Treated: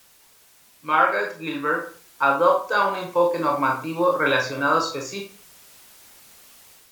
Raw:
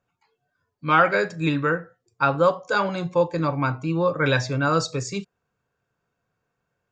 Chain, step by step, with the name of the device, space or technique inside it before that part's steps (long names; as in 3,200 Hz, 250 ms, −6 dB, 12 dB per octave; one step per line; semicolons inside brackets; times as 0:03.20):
filmed off a television (band-pass filter 300–6,100 Hz; parametric band 1,000 Hz +5 dB 0.43 octaves; convolution reverb RT60 0.40 s, pre-delay 19 ms, DRR 0.5 dB; white noise bed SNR 28 dB; automatic gain control gain up to 5.5 dB; level −4 dB; AAC 96 kbit/s 48,000 Hz)